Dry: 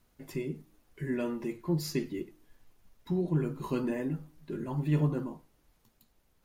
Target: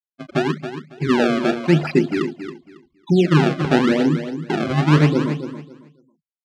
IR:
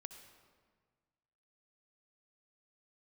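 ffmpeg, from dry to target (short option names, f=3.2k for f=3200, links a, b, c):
-af "afftfilt=real='re*gte(hypot(re,im),0.0178)':imag='im*gte(hypot(re,im),0.0178)':win_size=1024:overlap=0.75,dynaudnorm=f=120:g=3:m=15dB,acrusher=samples=27:mix=1:aa=0.000001:lfo=1:lforange=43.2:lforate=0.9,highpass=140,lowpass=3.6k,aecho=1:1:275|550|825:0.316|0.0696|0.0153,volume=1dB"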